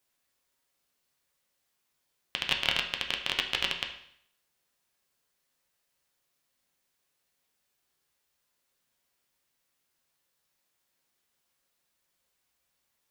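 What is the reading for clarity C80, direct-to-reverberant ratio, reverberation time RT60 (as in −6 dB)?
11.0 dB, 2.0 dB, 0.65 s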